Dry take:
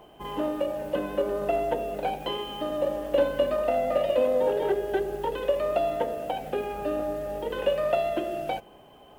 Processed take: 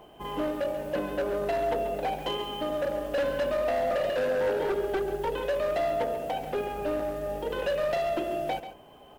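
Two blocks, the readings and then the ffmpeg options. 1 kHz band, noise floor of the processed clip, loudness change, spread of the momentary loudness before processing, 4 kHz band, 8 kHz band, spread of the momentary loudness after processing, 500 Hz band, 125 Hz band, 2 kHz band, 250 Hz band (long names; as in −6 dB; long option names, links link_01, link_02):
−1.0 dB, −51 dBFS, −1.5 dB, 7 LU, −0.5 dB, can't be measured, 5 LU, −2.0 dB, +0.5 dB, +2.5 dB, −2.0 dB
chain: -filter_complex "[0:a]volume=24.5dB,asoftclip=hard,volume=-24.5dB,asplit=2[link_01][link_02];[link_02]aecho=0:1:137:0.266[link_03];[link_01][link_03]amix=inputs=2:normalize=0"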